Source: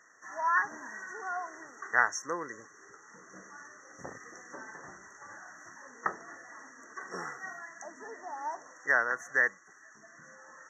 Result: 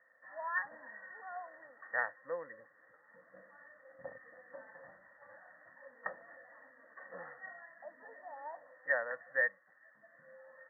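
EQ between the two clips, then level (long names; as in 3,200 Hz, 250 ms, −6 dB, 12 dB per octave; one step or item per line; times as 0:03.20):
formant resonators in series e
low-shelf EQ 75 Hz −10 dB
phaser with its sweep stopped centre 960 Hz, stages 4
+11.5 dB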